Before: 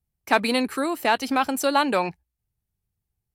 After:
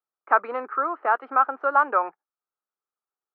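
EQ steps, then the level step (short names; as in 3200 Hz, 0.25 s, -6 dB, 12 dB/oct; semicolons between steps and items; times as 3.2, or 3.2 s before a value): HPF 390 Hz 24 dB/oct; ladder low-pass 1400 Hz, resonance 75%; air absorption 220 m; +8.0 dB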